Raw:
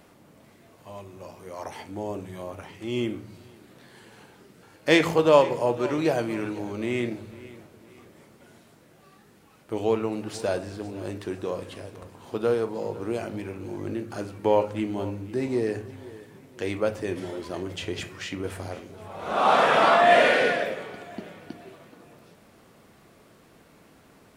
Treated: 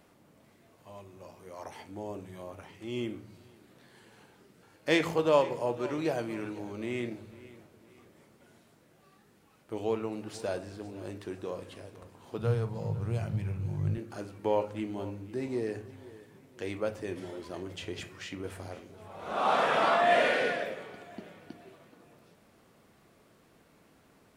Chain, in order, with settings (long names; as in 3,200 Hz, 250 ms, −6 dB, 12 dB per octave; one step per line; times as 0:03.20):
0:12.38–0:13.98: low shelf with overshoot 200 Hz +12 dB, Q 3
level −7 dB